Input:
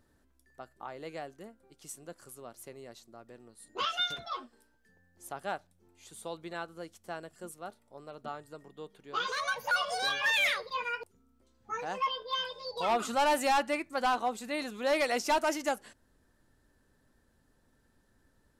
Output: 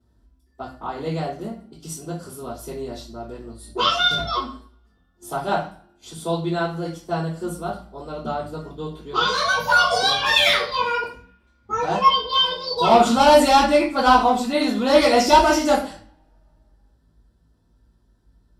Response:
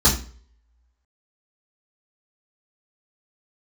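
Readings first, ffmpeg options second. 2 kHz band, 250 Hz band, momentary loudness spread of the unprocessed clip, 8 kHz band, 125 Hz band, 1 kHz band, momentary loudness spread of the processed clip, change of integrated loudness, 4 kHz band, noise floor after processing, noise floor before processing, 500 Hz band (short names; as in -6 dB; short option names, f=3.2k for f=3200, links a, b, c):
+10.0 dB, +17.0 dB, 20 LU, +10.5 dB, +23.0 dB, +14.0 dB, 20 LU, +13.0 dB, +14.0 dB, -62 dBFS, -70 dBFS, +14.5 dB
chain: -filter_complex "[0:a]agate=range=-13dB:threshold=-58dB:ratio=16:detection=peak[a];[1:a]atrim=start_sample=2205,asetrate=35280,aresample=44100[b];[a][b]afir=irnorm=-1:irlink=0,volume=-7dB"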